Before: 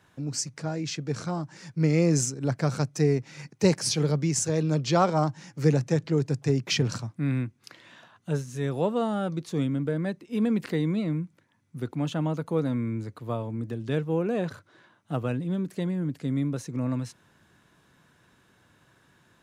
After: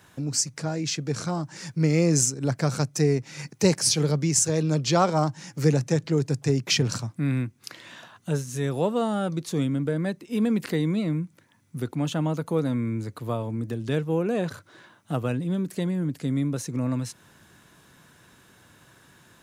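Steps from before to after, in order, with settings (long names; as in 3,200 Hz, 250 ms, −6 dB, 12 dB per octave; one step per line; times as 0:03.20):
high-shelf EQ 6,200 Hz +9 dB
in parallel at −0.5 dB: downward compressor, threshold −38 dBFS, peak gain reduction 20.5 dB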